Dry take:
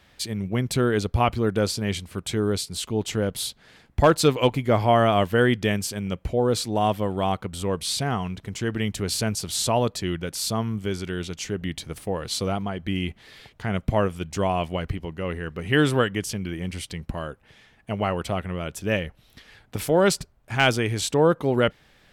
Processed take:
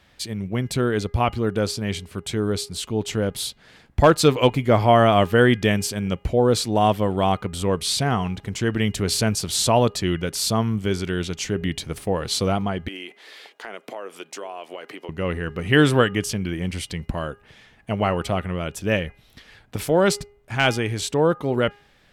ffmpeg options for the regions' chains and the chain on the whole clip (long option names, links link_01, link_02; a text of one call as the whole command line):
ffmpeg -i in.wav -filter_complex "[0:a]asettb=1/sr,asplit=3[link_01][link_02][link_03];[link_01]atrim=end=12.884[link_04];[link_02]atrim=start=12.88:end=15.09,asetpts=PTS-STARTPTS,afade=type=in:duration=0.004:curve=qsin,afade=type=out:start_time=2.206:duration=0.004:curve=qsin,highpass=frequency=340:width=0.5412,highpass=frequency=340:width=1.3066,acompressor=threshold=-35dB:ratio=5:attack=3.2:release=140:knee=1:detection=peak[link_05];[link_03]atrim=start=15.086[link_06];[link_04][link_05]acrossfade=duration=0.004:curve1=hsin:curve2=qsin[link_07];[link_07][link_06]acrossfade=duration=0.004:curve1=qsin:curve2=hsin,dynaudnorm=framelen=580:gausssize=13:maxgain=5dB,highshelf=frequency=11000:gain=-3.5,bandreject=frequency=409:width_type=h:width=4,bandreject=frequency=818:width_type=h:width=4,bandreject=frequency=1227:width_type=h:width=4,bandreject=frequency=1636:width_type=h:width=4,bandreject=frequency=2045:width_type=h:width=4,bandreject=frequency=2454:width_type=h:width=4,bandreject=frequency=2863:width_type=h:width=4" out.wav